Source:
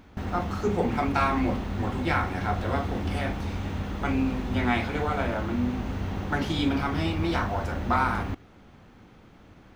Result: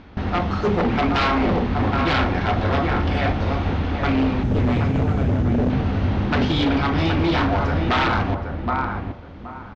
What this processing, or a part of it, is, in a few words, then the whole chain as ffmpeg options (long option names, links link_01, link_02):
synthesiser wavefolder: -filter_complex "[0:a]asettb=1/sr,asplit=3[link_01][link_02][link_03];[link_01]atrim=end=4.434[link_04];[link_02]atrim=start=4.43:end=5.7,asetpts=PTS-STARTPTS,afade=type=in:duration=0.004:curve=qsin,afade=type=out:start_time=1.266:duration=0.004:curve=qsin,equalizer=frequency=125:width_type=o:width=1:gain=11,equalizer=frequency=500:width_type=o:width=1:gain=-6,equalizer=frequency=1000:width_type=o:width=1:gain=-12,equalizer=frequency=2000:width_type=o:width=1:gain=-9,equalizer=frequency=4000:width_type=o:width=1:gain=-11,equalizer=frequency=8000:width_type=o:width=1:gain=9[link_05];[link_03]atrim=start=5.696[link_06];[link_04][link_05]acrossfade=duration=0.004:curve1=hsin:curve2=qsin[link_07];[link_07][link_06]acrossfade=duration=0.004:curve1=qsin:curve2=hsin,asplit=2[link_08][link_09];[link_09]adelay=773,lowpass=frequency=1800:poles=1,volume=-5.5dB,asplit=2[link_10][link_11];[link_11]adelay=773,lowpass=frequency=1800:poles=1,volume=0.24,asplit=2[link_12][link_13];[link_13]adelay=773,lowpass=frequency=1800:poles=1,volume=0.24[link_14];[link_08][link_10][link_12][link_14]amix=inputs=4:normalize=0,aeval=exprs='0.0891*(abs(mod(val(0)/0.0891+3,4)-2)-1)':channel_layout=same,lowpass=frequency=4900:width=0.5412,lowpass=frequency=4900:width=1.3066,volume=7.5dB"